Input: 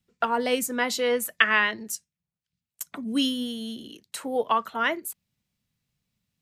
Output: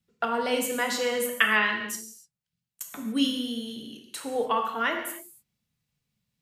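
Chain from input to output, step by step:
reverb whose tail is shaped and stops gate 320 ms falling, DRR 2.5 dB
level −3 dB

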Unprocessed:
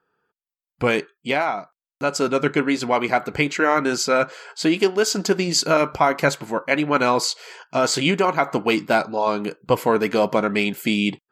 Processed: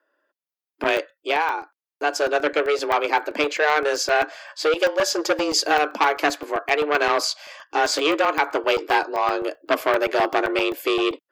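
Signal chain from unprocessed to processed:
parametric band 8,000 Hz −9 dB 0.3 octaves
frequency shifter +150 Hz
low shelf with overshoot 220 Hz −9 dB, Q 1.5
regular buffer underruns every 0.13 s, samples 64, zero, from 0:00.84
saturating transformer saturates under 1,800 Hz

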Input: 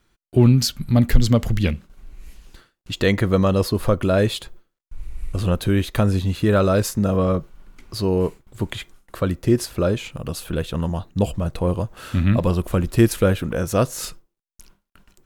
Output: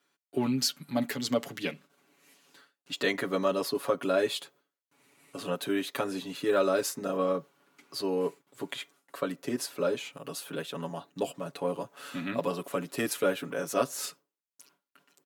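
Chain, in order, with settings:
Bessel high-pass filter 300 Hz, order 6
comb filter 7.1 ms, depth 94%
level −8.5 dB

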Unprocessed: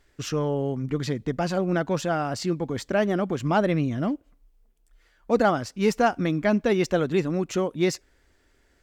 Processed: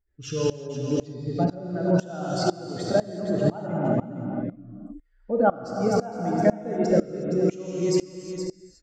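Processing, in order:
expanding power law on the bin magnitudes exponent 1.8
in parallel at −1 dB: downward compressor, threshold −30 dBFS, peak gain reduction 13.5 dB
on the sum: multi-tap delay 465/475 ms −8/−13.5 dB
reverb whose tail is shaped and stops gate 390 ms flat, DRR −1.5 dB
tremolo with a ramp in dB swelling 2 Hz, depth 22 dB

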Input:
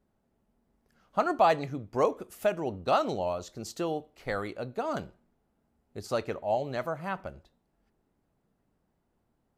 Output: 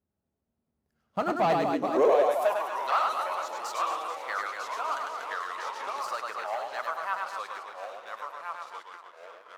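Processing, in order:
on a send: reverse bouncing-ball delay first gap 100 ms, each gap 1.4×, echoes 5
on the sum: delay with pitch and tempo change per echo 504 ms, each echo −2 semitones, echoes 3, each echo −6 dB
leveller curve on the samples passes 2
high-pass filter sweep 77 Hz → 1,100 Hz, 0:01.02–0:02.71
0:04.92–0:06.47: multiband upward and downward compressor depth 100%
level −8.5 dB

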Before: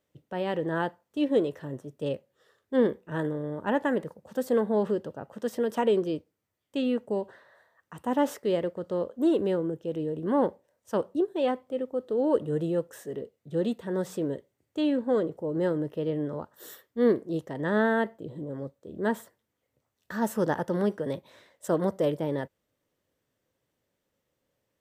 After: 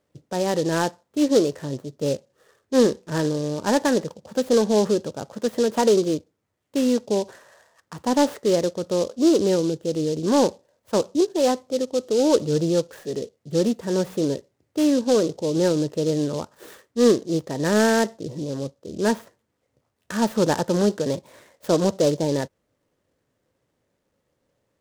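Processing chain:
high-shelf EQ 3,800 Hz −9.5 dB
in parallel at −5 dB: soft clipping −20.5 dBFS, distortion −14 dB
on the sum: short delay modulated by noise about 4,800 Hz, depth 0.05 ms
level +3.5 dB

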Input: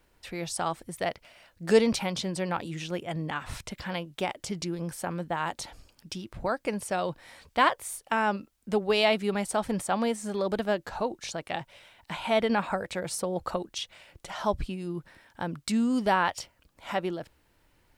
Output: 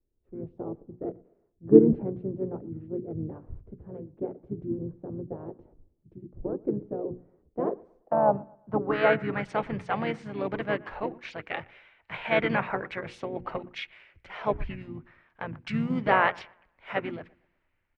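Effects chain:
mains-hum notches 60/120/180/240/300/360/420/480 Hz
pitch-shifted copies added −12 semitones −16 dB, −7 semitones −6 dB, −5 semitones −8 dB
low-pass filter sweep 370 Hz → 2,200 Hz, 0:07.58–0:09.49
bucket-brigade delay 118 ms, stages 2,048, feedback 43%, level −23 dB
multiband upward and downward expander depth 40%
level −4 dB

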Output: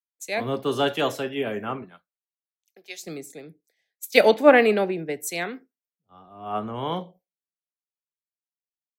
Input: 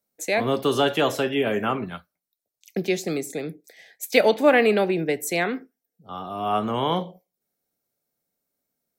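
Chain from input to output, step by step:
0:01.82–0:03.02: high-pass filter 220 Hz → 770 Hz 12 dB per octave
multiband upward and downward expander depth 100%
level −4.5 dB

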